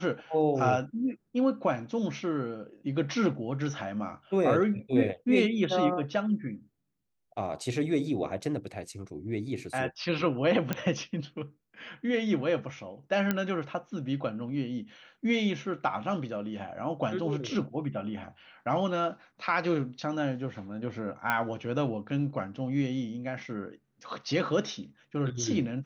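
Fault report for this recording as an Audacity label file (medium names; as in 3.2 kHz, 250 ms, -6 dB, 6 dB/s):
10.730000	10.730000	pop -14 dBFS
13.310000	13.310000	pop -13 dBFS
21.300000	21.300000	pop -14 dBFS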